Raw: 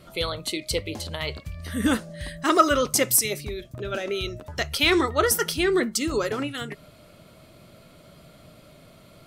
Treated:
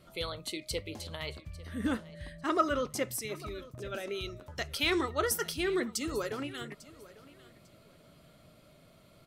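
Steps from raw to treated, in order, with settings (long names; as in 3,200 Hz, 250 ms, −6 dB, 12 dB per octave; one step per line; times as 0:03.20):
0:01.40–0:03.40: high-shelf EQ 3,800 Hz −10.5 dB
repeating echo 848 ms, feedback 24%, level −19.5 dB
level −9 dB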